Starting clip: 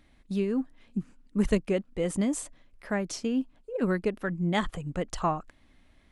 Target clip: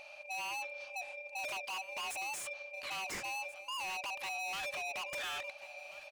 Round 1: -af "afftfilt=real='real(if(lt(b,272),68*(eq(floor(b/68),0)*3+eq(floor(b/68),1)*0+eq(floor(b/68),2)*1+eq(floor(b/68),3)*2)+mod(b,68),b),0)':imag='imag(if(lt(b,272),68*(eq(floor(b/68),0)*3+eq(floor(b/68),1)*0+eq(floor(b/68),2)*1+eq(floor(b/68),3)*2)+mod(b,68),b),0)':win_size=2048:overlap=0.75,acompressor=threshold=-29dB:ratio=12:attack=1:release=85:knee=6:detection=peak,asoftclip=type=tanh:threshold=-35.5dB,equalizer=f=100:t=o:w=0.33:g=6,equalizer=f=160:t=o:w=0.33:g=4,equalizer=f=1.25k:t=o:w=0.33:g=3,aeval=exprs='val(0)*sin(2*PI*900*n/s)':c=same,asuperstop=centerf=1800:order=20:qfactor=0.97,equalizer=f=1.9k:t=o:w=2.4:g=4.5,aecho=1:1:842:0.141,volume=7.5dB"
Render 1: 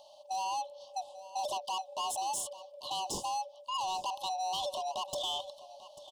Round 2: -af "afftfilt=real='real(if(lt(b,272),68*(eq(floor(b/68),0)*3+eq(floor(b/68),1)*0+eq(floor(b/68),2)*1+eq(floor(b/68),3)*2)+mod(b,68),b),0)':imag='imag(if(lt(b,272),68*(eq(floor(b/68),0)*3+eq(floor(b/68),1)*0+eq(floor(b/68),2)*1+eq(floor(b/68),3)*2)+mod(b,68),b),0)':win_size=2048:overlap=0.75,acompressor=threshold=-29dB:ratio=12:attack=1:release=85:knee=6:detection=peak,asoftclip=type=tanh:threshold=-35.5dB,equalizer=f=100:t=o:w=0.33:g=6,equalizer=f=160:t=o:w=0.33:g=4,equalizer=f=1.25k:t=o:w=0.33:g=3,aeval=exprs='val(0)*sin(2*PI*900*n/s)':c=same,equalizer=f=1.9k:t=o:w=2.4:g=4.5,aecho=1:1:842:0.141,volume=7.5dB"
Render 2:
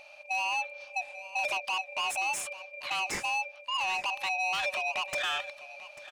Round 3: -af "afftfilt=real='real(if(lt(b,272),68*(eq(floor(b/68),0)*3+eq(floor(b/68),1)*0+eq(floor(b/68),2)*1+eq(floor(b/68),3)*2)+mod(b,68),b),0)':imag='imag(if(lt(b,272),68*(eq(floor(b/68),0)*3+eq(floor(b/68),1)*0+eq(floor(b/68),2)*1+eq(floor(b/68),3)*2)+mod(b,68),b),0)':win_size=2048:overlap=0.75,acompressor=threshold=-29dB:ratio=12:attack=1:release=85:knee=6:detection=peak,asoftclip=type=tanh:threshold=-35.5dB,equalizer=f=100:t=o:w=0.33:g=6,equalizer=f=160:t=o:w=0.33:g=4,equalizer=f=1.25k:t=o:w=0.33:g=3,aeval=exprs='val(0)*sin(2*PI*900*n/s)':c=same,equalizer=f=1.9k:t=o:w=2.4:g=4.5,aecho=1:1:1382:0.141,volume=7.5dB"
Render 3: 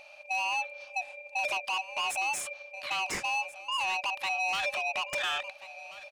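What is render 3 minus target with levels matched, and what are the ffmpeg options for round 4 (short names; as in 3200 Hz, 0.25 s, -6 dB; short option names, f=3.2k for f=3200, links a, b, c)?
soft clip: distortion -7 dB
-af "afftfilt=real='real(if(lt(b,272),68*(eq(floor(b/68),0)*3+eq(floor(b/68),1)*0+eq(floor(b/68),2)*1+eq(floor(b/68),3)*2)+mod(b,68),b),0)':imag='imag(if(lt(b,272),68*(eq(floor(b/68),0)*3+eq(floor(b/68),1)*0+eq(floor(b/68),2)*1+eq(floor(b/68),3)*2)+mod(b,68),b),0)':win_size=2048:overlap=0.75,acompressor=threshold=-29dB:ratio=12:attack=1:release=85:knee=6:detection=peak,asoftclip=type=tanh:threshold=-46.5dB,equalizer=f=100:t=o:w=0.33:g=6,equalizer=f=160:t=o:w=0.33:g=4,equalizer=f=1.25k:t=o:w=0.33:g=3,aeval=exprs='val(0)*sin(2*PI*900*n/s)':c=same,equalizer=f=1.9k:t=o:w=2.4:g=4.5,aecho=1:1:1382:0.141,volume=7.5dB"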